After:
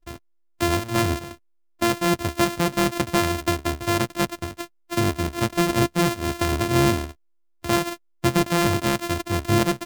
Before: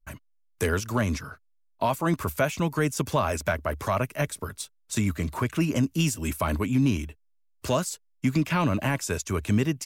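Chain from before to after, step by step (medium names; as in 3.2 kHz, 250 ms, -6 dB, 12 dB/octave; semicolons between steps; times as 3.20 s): sorted samples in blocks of 128 samples; trim +3.5 dB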